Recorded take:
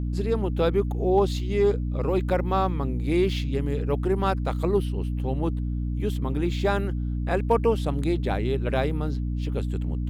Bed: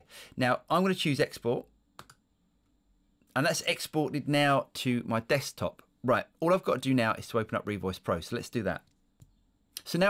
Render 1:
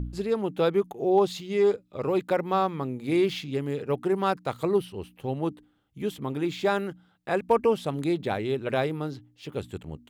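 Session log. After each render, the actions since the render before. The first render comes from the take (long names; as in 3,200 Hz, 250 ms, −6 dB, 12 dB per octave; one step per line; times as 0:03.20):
hum removal 60 Hz, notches 5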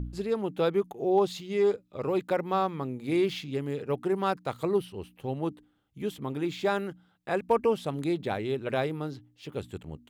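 level −2.5 dB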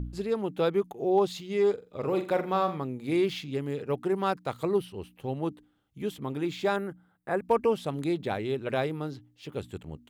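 0:01.73–0:02.78: flutter between parallel walls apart 7.5 metres, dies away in 0.31 s
0:06.76–0:07.45: flat-topped bell 4,100 Hz −11 dB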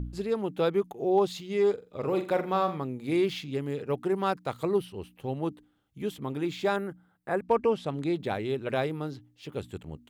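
0:07.41–0:08.14: high-frequency loss of the air 53 metres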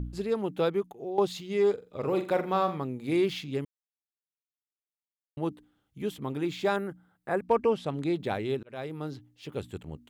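0:00.59–0:01.18: fade out, to −12.5 dB
0:03.65–0:05.37: silence
0:08.63–0:09.13: fade in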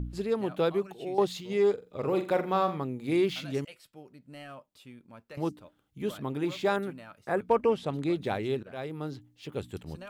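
mix in bed −20.5 dB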